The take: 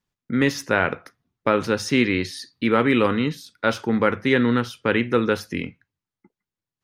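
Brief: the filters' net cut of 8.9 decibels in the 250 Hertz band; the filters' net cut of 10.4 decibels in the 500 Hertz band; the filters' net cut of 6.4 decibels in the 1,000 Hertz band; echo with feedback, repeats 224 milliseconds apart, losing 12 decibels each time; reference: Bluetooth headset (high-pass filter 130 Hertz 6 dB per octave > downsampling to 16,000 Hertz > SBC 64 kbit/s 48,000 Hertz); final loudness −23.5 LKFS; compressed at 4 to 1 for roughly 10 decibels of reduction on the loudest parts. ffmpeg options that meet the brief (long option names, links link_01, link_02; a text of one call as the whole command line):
ffmpeg -i in.wav -af "equalizer=frequency=250:width_type=o:gain=-6.5,equalizer=frequency=500:width_type=o:gain=-8.5,equalizer=frequency=1000:width_type=o:gain=-7.5,acompressor=threshold=-32dB:ratio=4,highpass=frequency=130:poles=1,aecho=1:1:224|448|672:0.251|0.0628|0.0157,aresample=16000,aresample=44100,volume=12.5dB" -ar 48000 -c:a sbc -b:a 64k out.sbc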